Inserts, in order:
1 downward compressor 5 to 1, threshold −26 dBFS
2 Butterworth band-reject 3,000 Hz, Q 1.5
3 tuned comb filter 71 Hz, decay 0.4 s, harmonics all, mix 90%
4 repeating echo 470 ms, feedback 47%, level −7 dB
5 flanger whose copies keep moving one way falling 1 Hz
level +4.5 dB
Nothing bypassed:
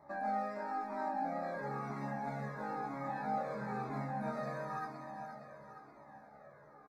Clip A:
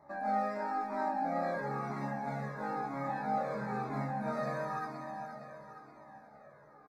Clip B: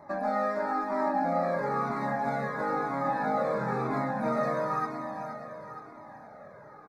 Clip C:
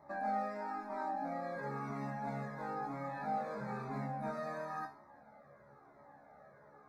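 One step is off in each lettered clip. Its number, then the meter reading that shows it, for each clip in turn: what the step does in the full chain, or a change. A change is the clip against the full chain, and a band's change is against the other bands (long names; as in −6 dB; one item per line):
1, average gain reduction 2.5 dB
3, 500 Hz band +3.0 dB
4, change in momentary loudness spread +4 LU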